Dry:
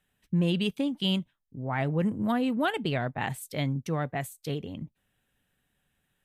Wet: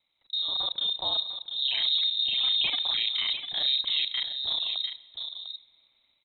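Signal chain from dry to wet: time reversed locally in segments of 30 ms; peaking EQ 2.4 kHz -9 dB 0.57 oct; peak limiter -26.5 dBFS, peak gain reduction 10 dB; level rider gain up to 6 dB; echo from a far wall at 120 m, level -7 dB; plate-style reverb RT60 1.4 s, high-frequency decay 1×, DRR 16.5 dB; frequency inversion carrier 3.9 kHz

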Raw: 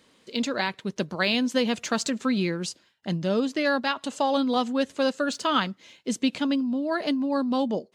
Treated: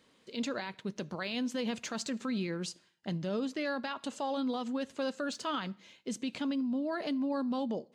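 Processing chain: treble shelf 5.4 kHz -3.5 dB; peak limiter -21 dBFS, peak gain reduction 9 dB; on a send: reverberation RT60 0.60 s, pre-delay 3 ms, DRR 19 dB; on the sum: trim -5.5 dB

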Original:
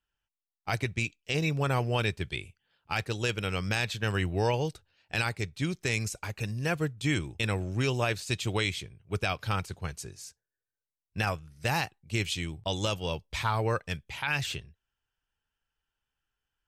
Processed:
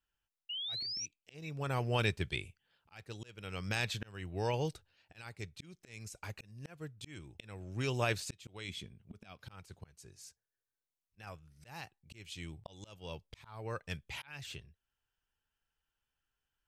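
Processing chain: slow attack 763 ms; 0.49–1.06 s: painted sound rise 2.8–6 kHz -37 dBFS; 8.68–9.39 s: small resonant body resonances 220/3400 Hz, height 13 dB -> 9 dB; trim -2.5 dB

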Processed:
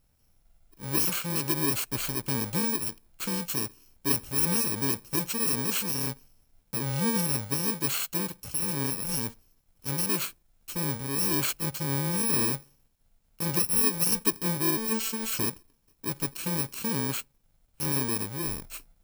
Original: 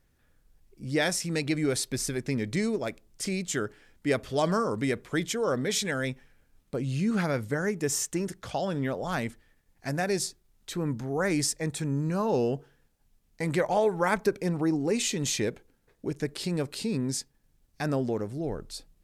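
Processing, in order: bit-reversed sample order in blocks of 64 samples; 14.77–15.32 s: robot voice 223 Hz

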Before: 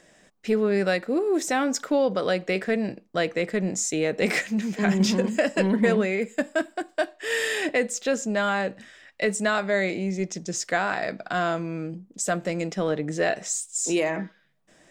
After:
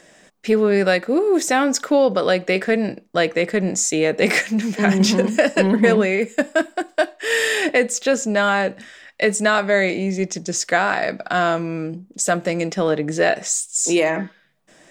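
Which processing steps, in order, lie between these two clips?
bass shelf 130 Hz -6.5 dB; trim +7 dB

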